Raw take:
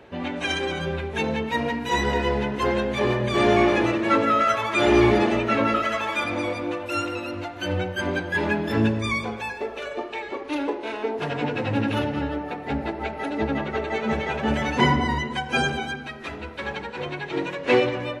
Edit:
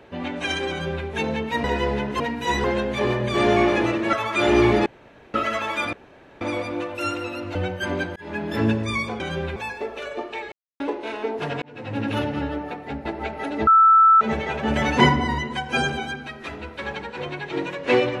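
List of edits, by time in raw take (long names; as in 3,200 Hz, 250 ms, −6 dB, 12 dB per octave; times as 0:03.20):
0:00.70–0:01.06: duplicate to 0:09.36
0:01.64–0:02.08: move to 0:02.64
0:04.13–0:04.52: remove
0:05.25–0:05.73: fill with room tone
0:06.32: splice in room tone 0.48 s
0:07.46–0:07.71: remove
0:08.32–0:08.71: fade in
0:10.32–0:10.60: silence
0:11.42–0:11.96: fade in linear
0:12.46–0:12.85: fade out, to −7.5 dB
0:13.47–0:14.01: beep over 1,320 Hz −10 dBFS
0:14.56–0:14.89: clip gain +3.5 dB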